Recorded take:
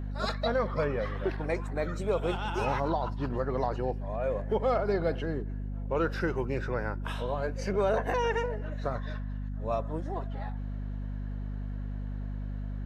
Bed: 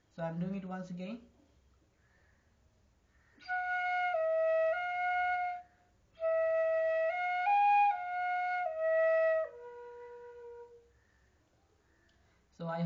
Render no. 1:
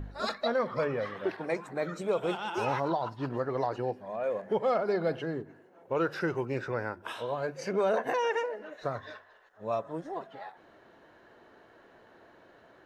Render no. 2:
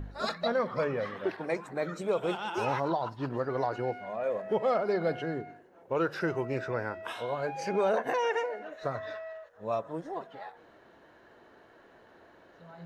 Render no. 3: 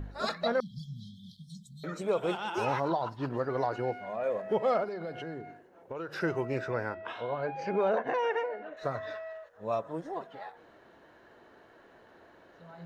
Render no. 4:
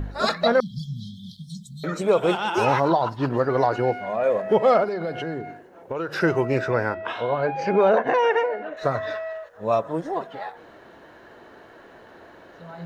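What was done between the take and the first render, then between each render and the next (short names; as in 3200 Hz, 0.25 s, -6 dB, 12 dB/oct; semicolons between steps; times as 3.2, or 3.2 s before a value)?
de-hum 50 Hz, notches 5
add bed -12.5 dB
0.6–1.84 brick-wall FIR band-stop 230–3100 Hz; 4.84–6.14 compressor 4:1, threshold -36 dBFS; 6.94–8.77 air absorption 200 m
gain +10 dB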